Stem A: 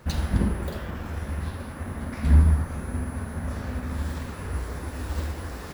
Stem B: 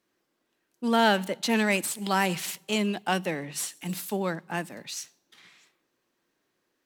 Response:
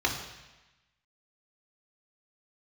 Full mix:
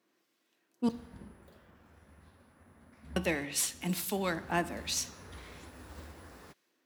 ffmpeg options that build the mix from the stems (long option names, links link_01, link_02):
-filter_complex "[0:a]highpass=frequency=150:poles=1,adelay=800,volume=-13.5dB,afade=type=in:start_time=4.1:duration=0.34:silence=0.316228[link_01];[1:a]highpass=190,acrossover=split=1600[link_02][link_03];[link_02]aeval=exprs='val(0)*(1-0.5/2+0.5/2*cos(2*PI*1.3*n/s))':channel_layout=same[link_04];[link_03]aeval=exprs='val(0)*(1-0.5/2-0.5/2*cos(2*PI*1.3*n/s))':channel_layout=same[link_05];[link_04][link_05]amix=inputs=2:normalize=0,volume=2.5dB,asplit=3[link_06][link_07][link_08];[link_06]atrim=end=0.89,asetpts=PTS-STARTPTS,afade=type=out:start_time=0.886:duration=0.004:curve=hsin[link_09];[link_07]atrim=start=0.89:end=3.16,asetpts=PTS-STARTPTS,volume=0[link_10];[link_08]atrim=start=3.16,asetpts=PTS-STARTPTS,afade=type=in:duration=0.004:curve=hsin[link_11];[link_09][link_10][link_11]concat=n=3:v=0:a=1,asplit=2[link_12][link_13];[link_13]volume=-21dB[link_14];[2:a]atrim=start_sample=2205[link_15];[link_14][link_15]afir=irnorm=-1:irlink=0[link_16];[link_01][link_12][link_16]amix=inputs=3:normalize=0"